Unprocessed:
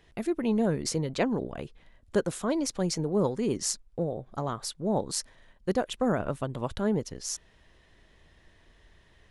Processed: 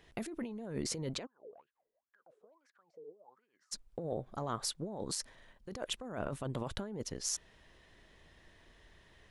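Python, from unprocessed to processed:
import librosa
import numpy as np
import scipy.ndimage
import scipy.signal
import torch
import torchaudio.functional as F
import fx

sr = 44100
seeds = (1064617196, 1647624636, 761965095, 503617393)

y = fx.low_shelf(x, sr, hz=130.0, db=-4.5)
y = fx.over_compress(y, sr, threshold_db=-34.0, ratio=-1.0)
y = fx.wah_lfo(y, sr, hz=fx.line((1.25, 3.2), (3.71, 0.88)), low_hz=420.0, high_hz=1700.0, q=21.0, at=(1.25, 3.71), fade=0.02)
y = y * 10.0 ** (-5.0 / 20.0)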